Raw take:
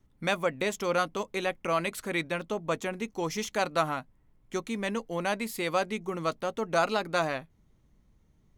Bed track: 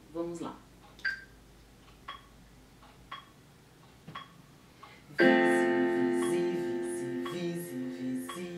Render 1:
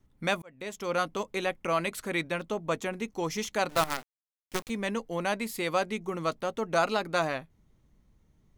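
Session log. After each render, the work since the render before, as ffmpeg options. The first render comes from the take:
ffmpeg -i in.wav -filter_complex "[0:a]asettb=1/sr,asplit=3[link_01][link_02][link_03];[link_01]atrim=end=3.694[link_04];[link_02]atrim=start=3.69:end=4.7,asetpts=PTS-STARTPTS,afade=type=in:duration=0.004:curve=qsin,afade=type=out:start_time=1.006:duration=0.004:curve=qsin,acrusher=bits=5:dc=4:mix=0:aa=0.000001[link_05];[link_03]atrim=start=4.696[link_06];[link_04][link_05]acrossfade=duration=0.004:curve1=hsin:curve2=qsin[link_07];[link_07][link_06]acrossfade=duration=0.004:curve1=qsin:curve2=hsin,asplit=2[link_08][link_09];[link_08]atrim=end=0.42,asetpts=PTS-STARTPTS,afade=type=out:start_time=0.416:duration=0.004:curve=hsin[link_10];[link_09]atrim=start=0.42,asetpts=PTS-STARTPTS,afade=type=in:duration=0.66[link_11];[link_10][link_11]concat=n=2:v=0:a=1" out.wav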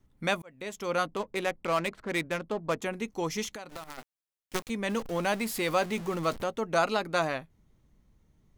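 ffmpeg -i in.wav -filter_complex "[0:a]asettb=1/sr,asplit=3[link_01][link_02][link_03];[link_01]atrim=end=1.064[link_04];[link_02]atrim=start=1.06:end=2.82,asetpts=PTS-STARTPTS,afade=type=in:duration=0.004:curve=qsin,afade=type=out:start_time=1.756:duration=0.004:curve=qsin,adynamicsmooth=sensitivity=7.5:basefreq=890[link_05];[link_03]atrim=start=2.816[link_06];[link_04][link_05]acrossfade=duration=0.004:curve1=hsin:curve2=qsin[link_07];[link_07][link_06]acrossfade=duration=0.004:curve1=qsin:curve2=hsin,asplit=3[link_08][link_09][link_10];[link_08]afade=type=out:start_time=3.54:duration=0.02[link_11];[link_09]acompressor=threshold=-37dB:ratio=16:attack=3.2:release=140:knee=1:detection=peak,afade=type=in:start_time=3.54:duration=0.02,afade=type=out:start_time=3.97:duration=0.02[link_12];[link_10]afade=type=in:start_time=3.97:duration=0.02[link_13];[link_11][link_12][link_13]amix=inputs=3:normalize=0,asettb=1/sr,asplit=3[link_14][link_15][link_16];[link_14]atrim=end=4.894[link_17];[link_15]atrim=start=4.89:end=6.44,asetpts=PTS-STARTPTS,afade=type=in:duration=0.004:curve=qsin,afade=type=out:start_time=1.546:duration=0.004:curve=qsin,aeval=exprs='val(0)+0.5*0.0141*sgn(val(0))':channel_layout=same[link_18];[link_16]atrim=start=6.436[link_19];[link_17][link_18]acrossfade=duration=0.004:curve1=hsin:curve2=qsin[link_20];[link_20][link_19]acrossfade=duration=0.004:curve1=qsin:curve2=hsin" out.wav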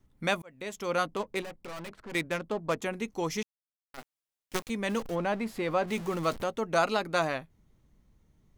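ffmpeg -i in.wav -filter_complex "[0:a]asettb=1/sr,asplit=3[link_01][link_02][link_03];[link_01]atrim=end=1.424[link_04];[link_02]atrim=start=1.42:end=2.15,asetpts=PTS-STARTPTS,afade=type=in:duration=0.004:curve=qsin,afade=type=out:start_time=0.726:duration=0.004:curve=qsin,aeval=exprs='(tanh(89.1*val(0)+0.55)-tanh(0.55))/89.1':channel_layout=same[link_05];[link_03]atrim=start=2.146[link_06];[link_04][link_05]acrossfade=duration=0.004:curve1=hsin:curve2=qsin[link_07];[link_07][link_06]acrossfade=duration=0.004:curve1=qsin:curve2=hsin,asplit=3[link_08][link_09][link_10];[link_08]afade=type=out:start_time=5.14:duration=0.02[link_11];[link_09]lowpass=frequency=1400:poles=1,afade=type=in:start_time=5.14:duration=0.02,afade=type=out:start_time=5.87:duration=0.02[link_12];[link_10]afade=type=in:start_time=5.87:duration=0.02[link_13];[link_11][link_12][link_13]amix=inputs=3:normalize=0,asplit=3[link_14][link_15][link_16];[link_14]atrim=end=3.43,asetpts=PTS-STARTPTS,afade=type=out:start_time=3.426:duration=0.004:curve=hsin[link_17];[link_15]atrim=start=3.43:end=3.94,asetpts=PTS-STARTPTS,volume=0[link_18];[link_16]atrim=start=3.94,asetpts=PTS-STARTPTS,afade=type=in:duration=0.004:curve=hsin[link_19];[link_17][link_18][link_19]concat=n=3:v=0:a=1" out.wav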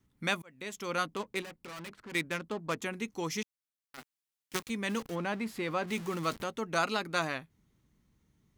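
ffmpeg -i in.wav -af "highpass=frequency=130:poles=1,equalizer=frequency=620:width_type=o:width=1.2:gain=-7.5" out.wav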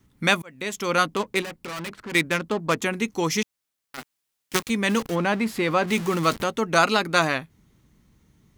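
ffmpeg -i in.wav -af "volume=11dB" out.wav

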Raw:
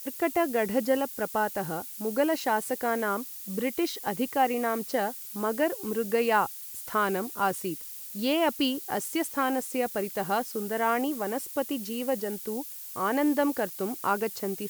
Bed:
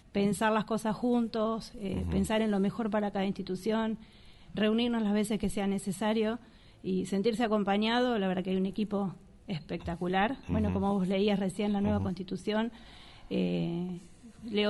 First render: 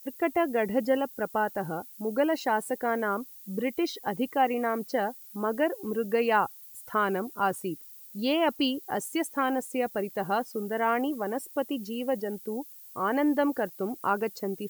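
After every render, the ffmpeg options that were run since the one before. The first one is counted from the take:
ffmpeg -i in.wav -af "afftdn=noise_reduction=12:noise_floor=-41" out.wav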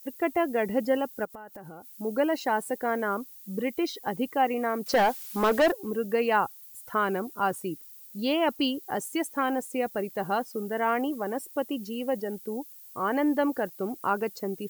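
ffmpeg -i in.wav -filter_complex "[0:a]asplit=3[link_01][link_02][link_03];[link_01]afade=type=out:start_time=1.24:duration=0.02[link_04];[link_02]acompressor=threshold=-40dB:ratio=8:attack=3.2:release=140:knee=1:detection=peak,afade=type=in:start_time=1.24:duration=0.02,afade=type=out:start_time=1.88:duration=0.02[link_05];[link_03]afade=type=in:start_time=1.88:duration=0.02[link_06];[link_04][link_05][link_06]amix=inputs=3:normalize=0,asettb=1/sr,asplit=3[link_07][link_08][link_09];[link_07]atrim=end=4.864[link_10];[link_08]atrim=start=4.86:end=5.72,asetpts=PTS-STARTPTS,afade=type=in:duration=0.004:curve=qsin,afade=type=out:start_time=0.856:duration=0.004:curve=qsin,asplit=2[link_11][link_12];[link_12]highpass=frequency=720:poles=1,volume=22dB,asoftclip=type=tanh:threshold=-13.5dB[link_13];[link_11][link_13]amix=inputs=2:normalize=0,lowpass=frequency=4600:poles=1,volume=-6dB[link_14];[link_09]atrim=start=5.716[link_15];[link_10][link_14]acrossfade=duration=0.004:curve1=hsin:curve2=qsin[link_16];[link_16][link_15]acrossfade=duration=0.004:curve1=qsin:curve2=hsin" out.wav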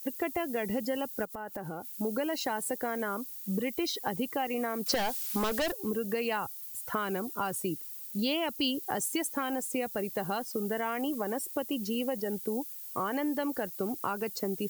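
ffmpeg -i in.wav -filter_complex "[0:a]asplit=2[link_01][link_02];[link_02]alimiter=limit=-23.5dB:level=0:latency=1:release=87,volume=-1.5dB[link_03];[link_01][link_03]amix=inputs=2:normalize=0,acrossover=split=130|3000[link_04][link_05][link_06];[link_05]acompressor=threshold=-30dB:ratio=6[link_07];[link_04][link_07][link_06]amix=inputs=3:normalize=0" out.wav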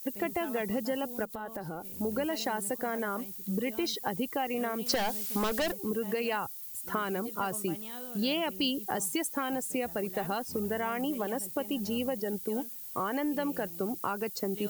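ffmpeg -i in.wav -i bed.wav -filter_complex "[1:a]volume=-17.5dB[link_01];[0:a][link_01]amix=inputs=2:normalize=0" out.wav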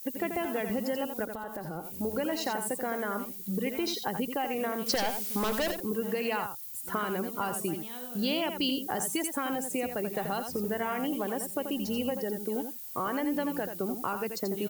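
ffmpeg -i in.wav -af "aecho=1:1:85:0.422" out.wav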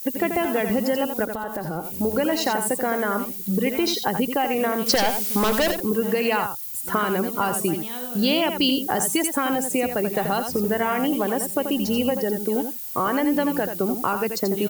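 ffmpeg -i in.wav -af "volume=9dB" out.wav

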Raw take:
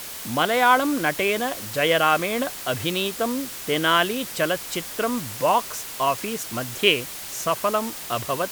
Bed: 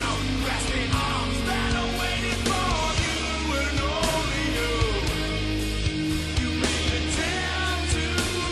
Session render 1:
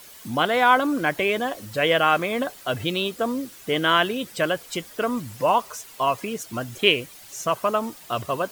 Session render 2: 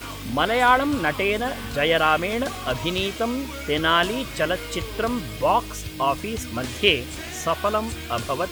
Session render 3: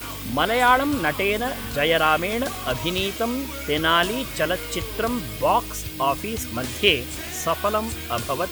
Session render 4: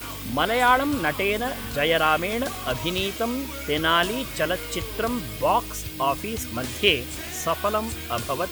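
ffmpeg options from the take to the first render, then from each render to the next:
ffmpeg -i in.wav -af "afftdn=noise_reduction=12:noise_floor=-35" out.wav
ffmpeg -i in.wav -i bed.wav -filter_complex "[1:a]volume=-9dB[link_01];[0:a][link_01]amix=inputs=2:normalize=0" out.wav
ffmpeg -i in.wav -af "highshelf=frequency=11000:gain=11.5" out.wav
ffmpeg -i in.wav -af "volume=-1.5dB" out.wav

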